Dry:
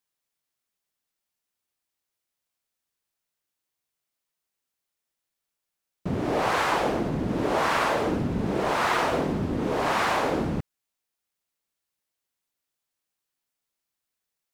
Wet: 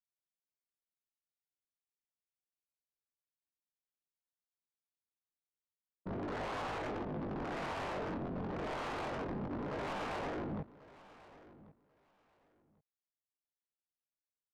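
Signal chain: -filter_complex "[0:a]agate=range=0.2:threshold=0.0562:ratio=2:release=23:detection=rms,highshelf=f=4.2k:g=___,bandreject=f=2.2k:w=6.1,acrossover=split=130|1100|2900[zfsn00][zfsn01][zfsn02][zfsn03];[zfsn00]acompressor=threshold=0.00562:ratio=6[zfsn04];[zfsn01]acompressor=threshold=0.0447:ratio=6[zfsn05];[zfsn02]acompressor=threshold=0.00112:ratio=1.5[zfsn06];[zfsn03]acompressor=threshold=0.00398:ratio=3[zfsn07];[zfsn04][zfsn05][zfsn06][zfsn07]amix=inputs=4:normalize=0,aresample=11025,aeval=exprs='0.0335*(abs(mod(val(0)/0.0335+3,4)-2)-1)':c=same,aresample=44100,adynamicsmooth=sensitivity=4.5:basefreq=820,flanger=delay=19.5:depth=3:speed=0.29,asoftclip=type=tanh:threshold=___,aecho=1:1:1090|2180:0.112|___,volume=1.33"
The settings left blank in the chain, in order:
-11.5, 0.0133, 0.0213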